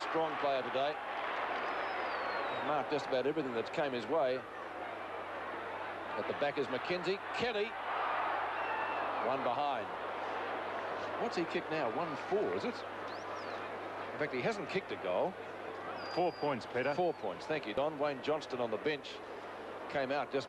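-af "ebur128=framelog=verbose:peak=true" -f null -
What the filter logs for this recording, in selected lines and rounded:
Integrated loudness:
  I:         -36.7 LUFS
  Threshold: -46.7 LUFS
Loudness range:
  LRA:         2.3 LU
  Threshold: -56.7 LUFS
  LRA low:   -37.9 LUFS
  LRA high:  -35.6 LUFS
True peak:
  Peak:      -23.2 dBFS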